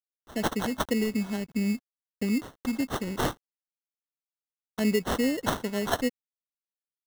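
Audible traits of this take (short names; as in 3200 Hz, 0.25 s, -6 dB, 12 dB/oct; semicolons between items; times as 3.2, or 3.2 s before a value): a quantiser's noise floor 10-bit, dither none; phasing stages 2, 2.5 Hz, lowest notch 720–2100 Hz; aliases and images of a low sample rate 2400 Hz, jitter 0%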